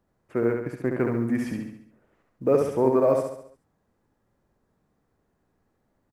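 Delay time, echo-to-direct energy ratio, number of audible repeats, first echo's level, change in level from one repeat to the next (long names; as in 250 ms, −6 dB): 69 ms, −3.0 dB, 6, −4.0 dB, −6.0 dB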